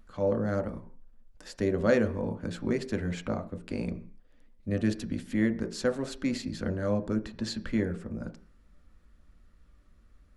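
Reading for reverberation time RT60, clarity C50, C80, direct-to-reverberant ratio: 0.40 s, 14.5 dB, 19.0 dB, 6.0 dB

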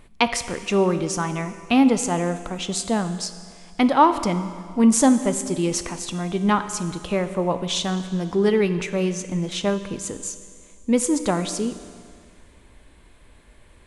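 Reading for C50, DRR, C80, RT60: 11.0 dB, 9.5 dB, 12.0 dB, 2.0 s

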